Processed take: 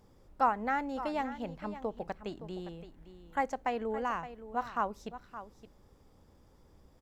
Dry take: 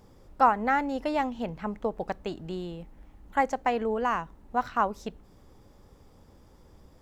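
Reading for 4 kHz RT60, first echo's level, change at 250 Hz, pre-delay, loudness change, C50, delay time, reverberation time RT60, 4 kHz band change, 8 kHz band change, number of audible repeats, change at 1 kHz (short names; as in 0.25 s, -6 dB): none, -13.0 dB, -6.5 dB, none, -6.5 dB, none, 0.568 s, none, -6.5 dB, -6.5 dB, 1, -6.5 dB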